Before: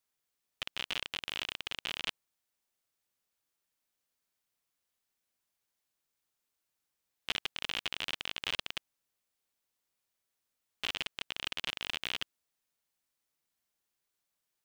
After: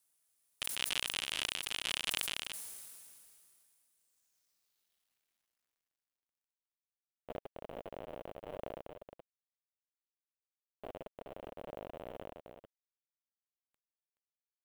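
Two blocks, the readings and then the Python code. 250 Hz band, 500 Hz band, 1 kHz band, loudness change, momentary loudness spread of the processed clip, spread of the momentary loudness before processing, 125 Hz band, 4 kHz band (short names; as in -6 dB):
+1.5 dB, +6.5 dB, -1.5 dB, -2.5 dB, 19 LU, 5 LU, 0.0 dB, -3.0 dB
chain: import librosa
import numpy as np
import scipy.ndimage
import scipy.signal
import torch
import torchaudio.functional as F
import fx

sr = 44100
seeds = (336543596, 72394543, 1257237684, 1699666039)

y = fx.filter_sweep_lowpass(x, sr, from_hz=10000.0, to_hz=590.0, start_s=3.92, end_s=6.67, q=3.2)
y = fx.quant_companded(y, sr, bits=8)
y = fx.high_shelf(y, sr, hz=8400.0, db=11.5)
y = y + 10.0 ** (-9.0 / 20.0) * np.pad(y, (int(425 * sr / 1000.0), 0))[:len(y)]
y = fx.sustainer(y, sr, db_per_s=24.0)
y = F.gain(torch.from_numpy(y), -3.0).numpy()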